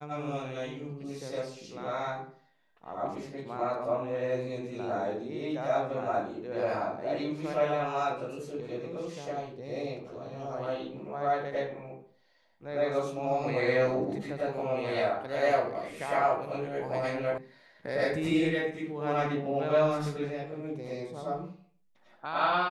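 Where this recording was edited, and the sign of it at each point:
17.38 s: sound stops dead

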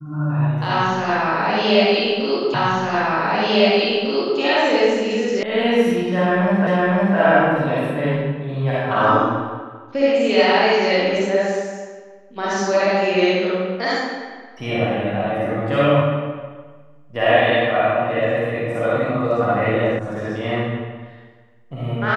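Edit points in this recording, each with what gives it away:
2.54 s: repeat of the last 1.85 s
5.43 s: sound stops dead
6.67 s: repeat of the last 0.51 s
19.99 s: sound stops dead

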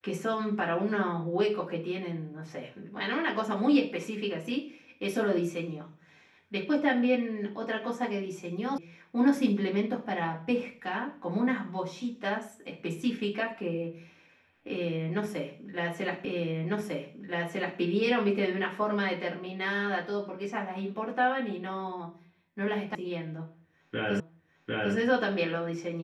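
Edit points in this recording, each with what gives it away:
8.78 s: sound stops dead
16.25 s: repeat of the last 1.55 s
22.95 s: sound stops dead
24.20 s: repeat of the last 0.75 s

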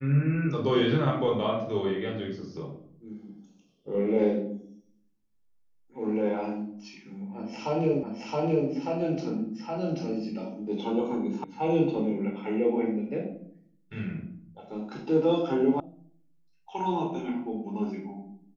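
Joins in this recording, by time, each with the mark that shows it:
8.03 s: repeat of the last 0.67 s
11.44 s: sound stops dead
15.80 s: sound stops dead

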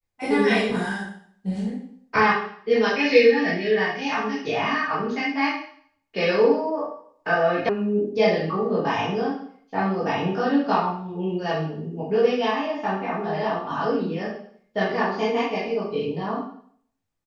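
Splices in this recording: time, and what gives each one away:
7.69 s: sound stops dead

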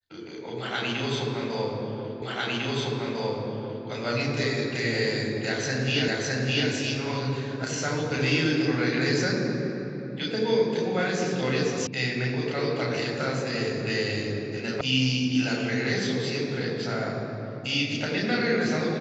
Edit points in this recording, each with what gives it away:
2.22 s: repeat of the last 1.65 s
6.08 s: repeat of the last 0.61 s
11.87 s: sound stops dead
14.81 s: sound stops dead

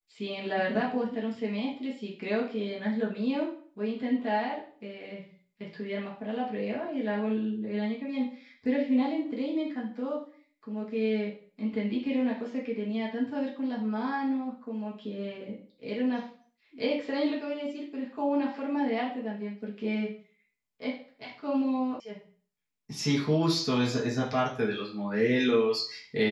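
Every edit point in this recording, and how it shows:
22.00 s: sound stops dead

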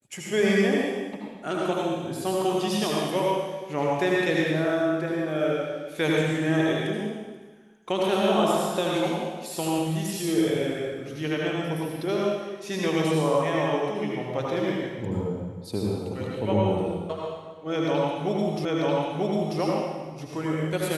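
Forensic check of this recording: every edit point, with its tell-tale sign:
18.65 s: repeat of the last 0.94 s

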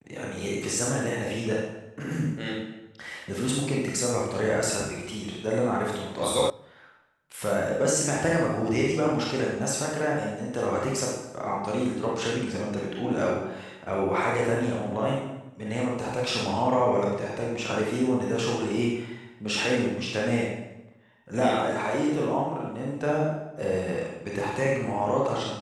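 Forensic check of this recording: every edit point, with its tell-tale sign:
6.50 s: sound stops dead

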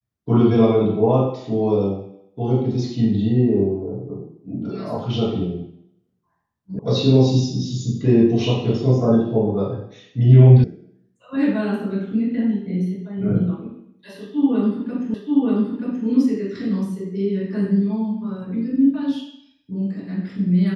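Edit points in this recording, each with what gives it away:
6.79 s: sound stops dead
10.64 s: sound stops dead
15.14 s: repeat of the last 0.93 s

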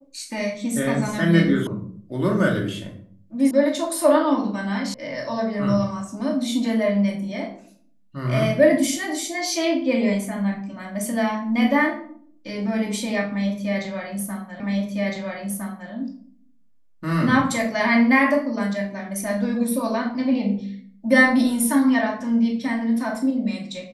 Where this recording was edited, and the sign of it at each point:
1.67 s: sound stops dead
3.51 s: sound stops dead
4.94 s: sound stops dead
14.60 s: repeat of the last 1.31 s

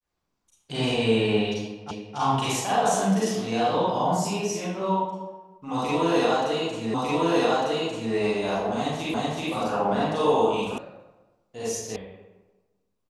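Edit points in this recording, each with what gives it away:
1.91 s: repeat of the last 0.27 s
6.94 s: repeat of the last 1.2 s
9.14 s: repeat of the last 0.38 s
10.78 s: sound stops dead
11.96 s: sound stops dead

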